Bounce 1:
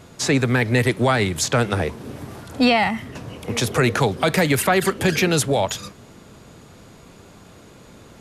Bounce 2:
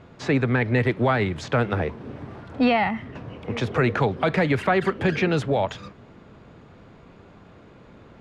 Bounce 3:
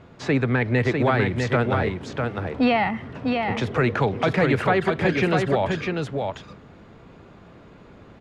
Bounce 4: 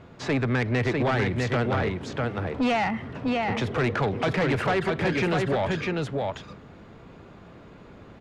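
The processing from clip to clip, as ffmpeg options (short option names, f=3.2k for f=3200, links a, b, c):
-af "lowpass=2.5k,volume=-2.5dB"
-af "aecho=1:1:650:0.596"
-af "asoftclip=type=tanh:threshold=-19dB"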